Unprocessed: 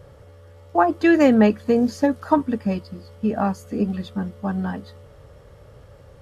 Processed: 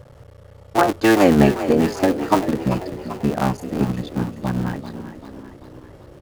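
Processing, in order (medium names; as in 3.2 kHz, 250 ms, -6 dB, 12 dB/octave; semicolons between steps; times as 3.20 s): cycle switcher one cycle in 3, muted; peaking EQ 130 Hz +6 dB 0.26 oct; frequency-shifting echo 390 ms, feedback 56%, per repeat +41 Hz, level -11.5 dB; trim +2.5 dB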